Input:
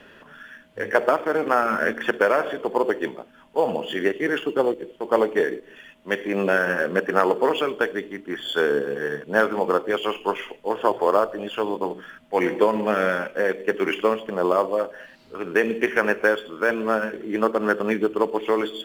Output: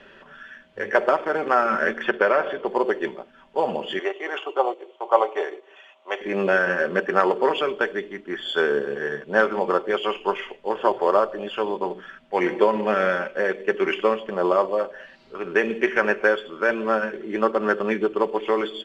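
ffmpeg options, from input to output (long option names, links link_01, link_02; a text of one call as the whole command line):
ffmpeg -i in.wav -filter_complex "[0:a]asettb=1/sr,asplit=3[link_01][link_02][link_03];[link_01]atrim=end=2.044[link_04];[link_02]atrim=start=2.04:end=2.67,asetpts=PTS-STARTPTS,afade=type=in:duration=0.004:curve=qsin,afade=type=out:start_time=0.626:duration=0.004:curve=qsin,lowpass=4800[link_05];[link_03]atrim=start=2.666[link_06];[link_04][link_05]acrossfade=duration=0.004:curve1=hsin:curve2=qsin[link_07];[link_07][link_06]acrossfade=duration=0.004:curve1=qsin:curve2=hsin,asettb=1/sr,asplit=3[link_08][link_09][link_10];[link_08]atrim=end=3.994[link_11];[link_09]atrim=start=3.99:end=6.21,asetpts=PTS-STARTPTS,afade=type=in:duration=0.004:curve=qsin,afade=type=out:start_time=2.216:duration=0.004:curve=qsin,highpass=frequency=420:width=0.5412,highpass=frequency=420:width=1.3066,equalizer=frequency=460:width_type=q:width=4:gain=-5,equalizer=frequency=750:width_type=q:width=4:gain=8,equalizer=frequency=1100:width_type=q:width=4:gain=6,equalizer=frequency=1700:width_type=q:width=4:gain=-9,equalizer=frequency=4800:width_type=q:width=4:gain=-9,lowpass=frequency=8000:width=0.5412,lowpass=frequency=8000:width=1.3066[link_12];[link_10]atrim=start=6.206[link_13];[link_11][link_12]acrossfade=duration=0.004:curve1=hsin:curve2=qsin[link_14];[link_14][link_13]acrossfade=duration=0.004:curve1=qsin:curve2=hsin,lowpass=5400,equalizer=frequency=180:width_type=o:width=1.2:gain=-4.5,aecho=1:1:5.2:0.4" out.wav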